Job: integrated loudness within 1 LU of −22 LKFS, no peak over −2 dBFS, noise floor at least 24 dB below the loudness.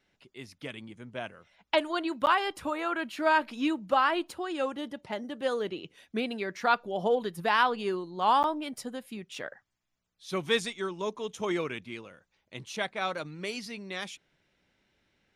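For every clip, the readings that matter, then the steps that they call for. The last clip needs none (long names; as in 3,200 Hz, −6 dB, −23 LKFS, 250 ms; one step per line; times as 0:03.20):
number of dropouts 2; longest dropout 9.5 ms; integrated loudness −30.5 LKFS; sample peak −13.0 dBFS; target loudness −22.0 LKFS
→ repair the gap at 0:02.26/0:08.43, 9.5 ms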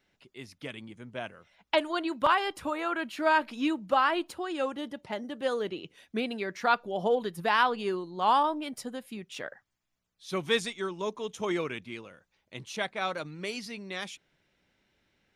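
number of dropouts 0; integrated loudness −30.0 LKFS; sample peak −12.0 dBFS; target loudness −22.0 LKFS
→ level +8 dB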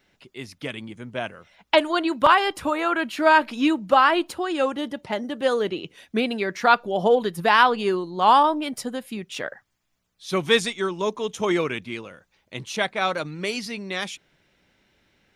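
integrated loudness −22.5 LKFS; sample peak −4.0 dBFS; background noise floor −71 dBFS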